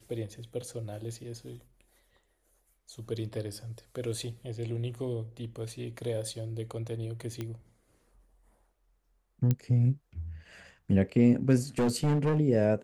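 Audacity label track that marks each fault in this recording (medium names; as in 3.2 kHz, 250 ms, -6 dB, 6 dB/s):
7.410000	7.410000	pop -22 dBFS
9.510000	9.510000	pop -15 dBFS
11.790000	12.400000	clipped -22.5 dBFS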